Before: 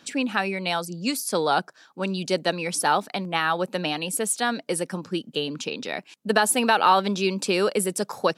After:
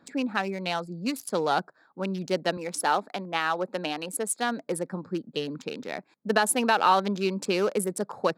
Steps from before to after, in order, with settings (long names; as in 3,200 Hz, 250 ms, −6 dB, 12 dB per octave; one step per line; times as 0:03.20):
adaptive Wiener filter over 15 samples
0:02.57–0:04.38: high-pass filter 220 Hz 12 dB per octave
level −2.5 dB